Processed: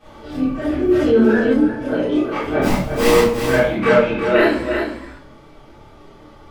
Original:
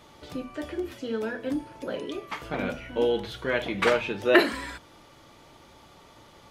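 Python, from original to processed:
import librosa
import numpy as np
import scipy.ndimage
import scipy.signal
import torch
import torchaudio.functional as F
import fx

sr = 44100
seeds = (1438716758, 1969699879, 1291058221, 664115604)

p1 = fx.high_shelf(x, sr, hz=2100.0, db=-10.0)
p2 = fx.rider(p1, sr, range_db=5, speed_s=0.5)
p3 = p1 + F.gain(torch.from_numpy(p2), 0.0).numpy()
p4 = fx.sample_hold(p3, sr, seeds[0], rate_hz=1500.0, jitter_pct=20, at=(2.61, 3.35), fade=0.02)
p5 = fx.chorus_voices(p4, sr, voices=2, hz=0.78, base_ms=30, depth_ms=3.9, mix_pct=60)
p6 = p5 + fx.echo_single(p5, sr, ms=357, db=-7.0, dry=0)
p7 = fx.room_shoebox(p6, sr, seeds[1], volume_m3=53.0, walls='mixed', distance_m=2.4)
p8 = fx.env_flatten(p7, sr, amount_pct=50, at=(0.9, 1.53), fade=0.02)
y = F.gain(torch.from_numpy(p8), -4.5).numpy()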